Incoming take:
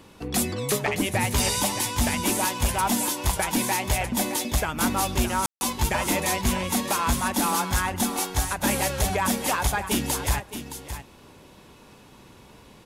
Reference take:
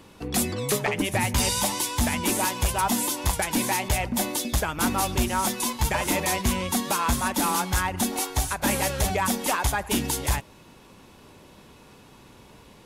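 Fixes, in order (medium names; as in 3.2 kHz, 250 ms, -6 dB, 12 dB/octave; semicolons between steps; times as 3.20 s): room tone fill 5.46–5.61 s; inverse comb 618 ms -10.5 dB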